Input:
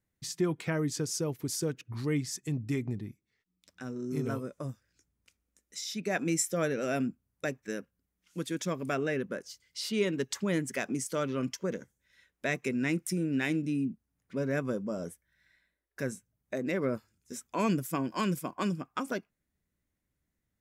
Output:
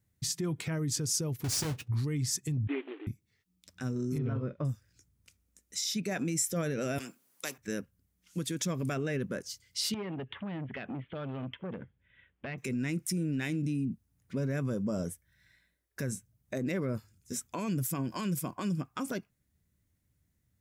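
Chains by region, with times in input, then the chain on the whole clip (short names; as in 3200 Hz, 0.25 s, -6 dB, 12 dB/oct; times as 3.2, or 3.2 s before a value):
1.44–1.88 half-waves squared off + high shelf 8700 Hz -7 dB + notch comb 170 Hz
2.67–3.07 CVSD 16 kbps + brick-wall FIR high-pass 270 Hz
4.18–4.65 LPF 3300 Hz 24 dB/oct + doubler 45 ms -14 dB
6.98–7.58 Bessel high-pass 460 Hz, order 4 + spectral compressor 2:1
9.94–12.58 steep low-pass 3400 Hz 96 dB/oct + compressor 3:1, threshold -37 dBFS + core saturation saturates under 870 Hz
whole clip: bell 99 Hz +12.5 dB 1.8 oct; limiter -25.5 dBFS; high shelf 3500 Hz +7 dB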